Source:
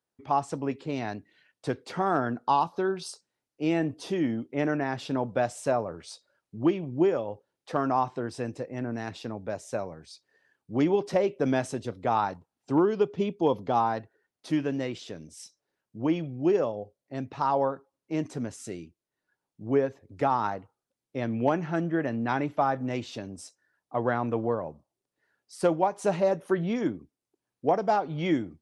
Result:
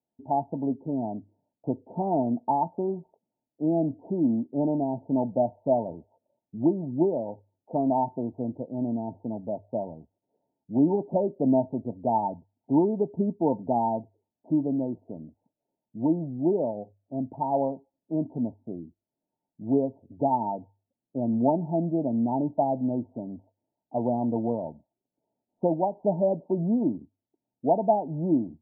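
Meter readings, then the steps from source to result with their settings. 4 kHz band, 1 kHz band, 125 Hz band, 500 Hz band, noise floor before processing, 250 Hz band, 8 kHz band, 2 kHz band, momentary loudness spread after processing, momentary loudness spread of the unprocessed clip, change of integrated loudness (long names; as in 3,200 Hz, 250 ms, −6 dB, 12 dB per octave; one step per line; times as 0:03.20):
below −40 dB, −1.0 dB, +1.0 dB, 0.0 dB, below −85 dBFS, +3.5 dB, below −35 dB, below −40 dB, 13 LU, 15 LU, +1.0 dB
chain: Chebyshev low-pass with heavy ripple 930 Hz, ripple 9 dB
mains-hum notches 50/100 Hz
level +6 dB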